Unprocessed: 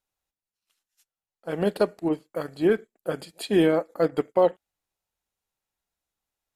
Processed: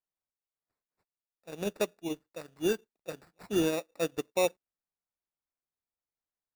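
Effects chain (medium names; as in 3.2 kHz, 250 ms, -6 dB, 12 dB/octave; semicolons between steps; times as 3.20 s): sample-and-hold 14×; modulation noise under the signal 34 dB; upward expansion 1.5:1, over -34 dBFS; trim -7 dB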